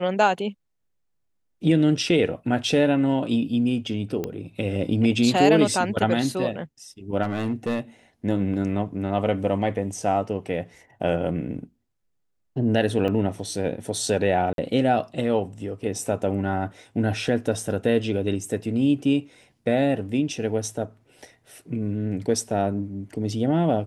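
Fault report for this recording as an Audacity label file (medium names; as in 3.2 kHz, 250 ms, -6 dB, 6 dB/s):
4.240000	4.240000	pop -15 dBFS
7.220000	7.800000	clipped -20.5 dBFS
13.080000	13.080000	dropout 3.1 ms
14.530000	14.580000	dropout 52 ms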